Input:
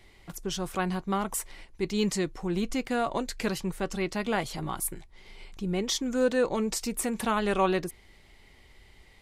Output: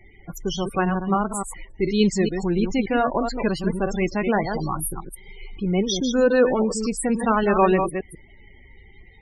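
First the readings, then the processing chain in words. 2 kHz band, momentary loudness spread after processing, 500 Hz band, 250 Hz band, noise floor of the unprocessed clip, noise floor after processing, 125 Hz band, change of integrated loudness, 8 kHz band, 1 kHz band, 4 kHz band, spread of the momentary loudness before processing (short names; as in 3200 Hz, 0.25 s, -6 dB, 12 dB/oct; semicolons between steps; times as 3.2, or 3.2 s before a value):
+6.0 dB, 12 LU, +8.0 dB, +8.0 dB, -56 dBFS, -49 dBFS, +8.0 dB, +7.0 dB, +2.0 dB, +7.5 dB, +3.5 dB, 9 LU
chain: reverse delay 0.143 s, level -6 dB; loudest bins only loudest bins 32; gain +7 dB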